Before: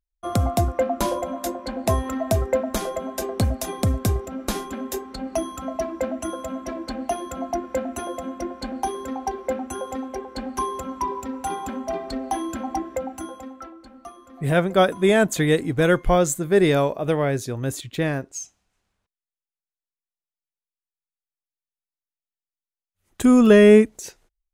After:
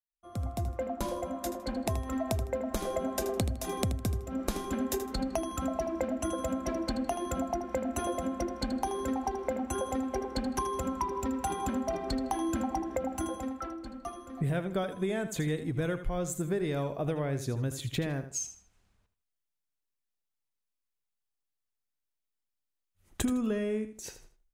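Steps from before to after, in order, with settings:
fade in at the beginning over 3.42 s
low-shelf EQ 180 Hz +8 dB
downward compressor 16 to 1, threshold −28 dBFS, peak gain reduction 23 dB
repeating echo 79 ms, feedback 26%, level −11 dB

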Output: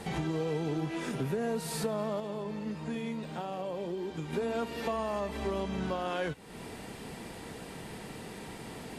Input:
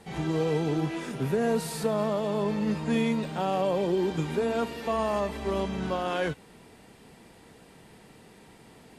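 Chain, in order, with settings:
downward compressor 3 to 1, threshold −44 dBFS, peak gain reduction 16 dB
0:02.20–0:04.33: flanger 1.6 Hz, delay 7.3 ms, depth 6.8 ms, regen −77%
level +9 dB

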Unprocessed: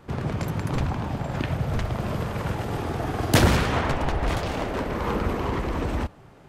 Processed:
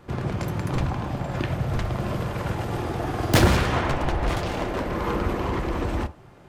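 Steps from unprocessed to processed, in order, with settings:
stylus tracing distortion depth 0.047 ms
on a send: convolution reverb, pre-delay 3 ms, DRR 10 dB

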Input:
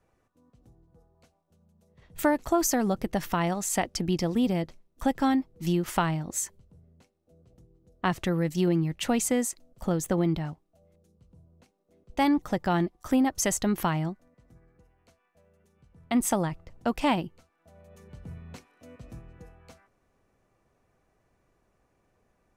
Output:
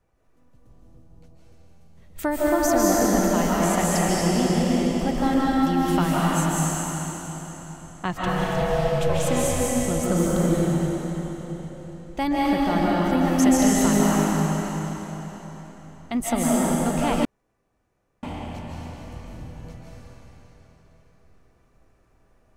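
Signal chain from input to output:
low-shelf EQ 75 Hz +8 dB
0:08.26–0:09.27: ring modulation 320 Hz
convolution reverb RT60 4.2 s, pre-delay 110 ms, DRR −7.5 dB
0:17.25–0:18.23: fill with room tone
level −2 dB

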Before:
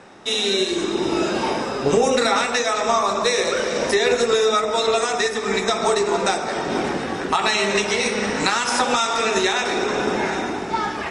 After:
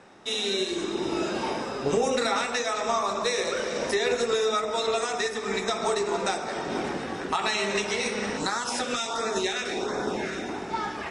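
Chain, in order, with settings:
0:08.37–0:10.49: auto-filter notch sine 1.4 Hz 830–2,900 Hz
level −7 dB

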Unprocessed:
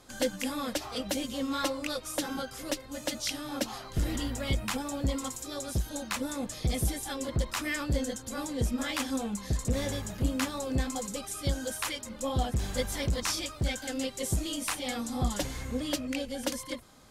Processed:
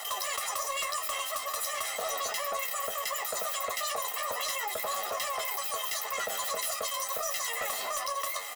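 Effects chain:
lower of the sound and its delayed copy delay 2 ms
high-pass filter 210 Hz 24 dB per octave
comb filter 3.1 ms, depth 82%
soft clipping −27 dBFS, distortion −14 dB
on a send: flutter between parallel walls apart 3.7 metres, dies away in 0.22 s
on the sum: wrong playback speed 7.5 ips tape played at 15 ips
envelope flattener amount 70%
level −1 dB

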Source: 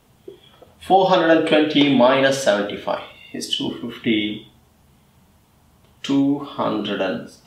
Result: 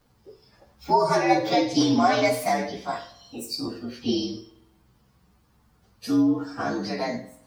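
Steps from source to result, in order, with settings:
partials spread apart or drawn together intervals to 117%
spring reverb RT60 1 s, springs 46 ms, chirp 50 ms, DRR 17 dB
level −3.5 dB

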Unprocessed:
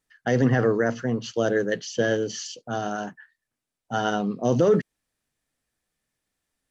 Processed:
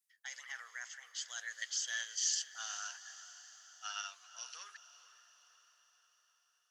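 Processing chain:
source passing by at 0:02.66, 23 m/s, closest 25 metres
high-pass filter 1,100 Hz 24 dB per octave
first difference
on a send: feedback delay with all-pass diffusion 452 ms, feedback 57%, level −14 dB
on the sum: level +4.5 dB

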